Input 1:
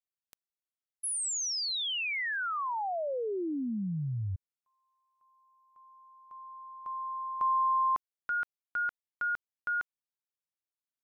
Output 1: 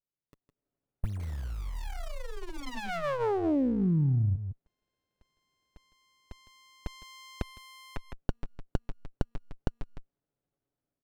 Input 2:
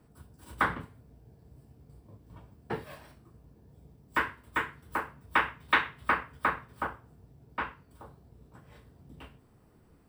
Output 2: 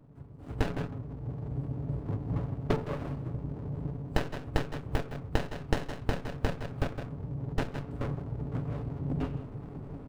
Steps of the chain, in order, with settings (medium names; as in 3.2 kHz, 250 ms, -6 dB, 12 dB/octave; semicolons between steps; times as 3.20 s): local Wiener filter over 25 samples; comb 7.1 ms, depth 54%; on a send: delay 159 ms -16.5 dB; on the sum: level rider gain up to 15.5 dB; in parallel at -3 dB: saturation -16.5 dBFS; on the sum: compression 6:1, threshold -25 dBFS; sliding maximum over 33 samples